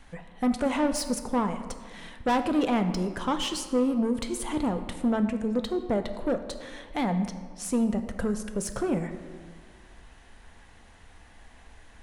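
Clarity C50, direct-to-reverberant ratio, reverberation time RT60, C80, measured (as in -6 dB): 10.0 dB, 7.5 dB, 1.7 s, 11.5 dB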